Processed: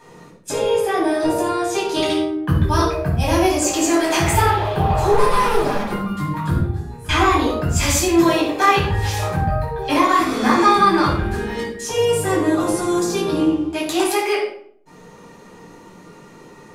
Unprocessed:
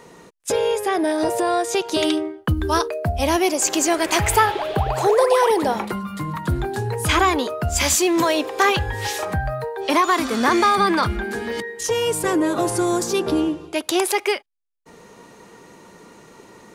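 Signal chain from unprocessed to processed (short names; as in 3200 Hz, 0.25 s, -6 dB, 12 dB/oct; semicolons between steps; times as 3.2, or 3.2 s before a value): 5.11–5.83 minimum comb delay 4.9 ms; 6.58–7.09 resonator 120 Hz, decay 1 s, harmonics all, mix 90%; shoebox room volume 1000 m³, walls furnished, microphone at 8.6 m; gain -8.5 dB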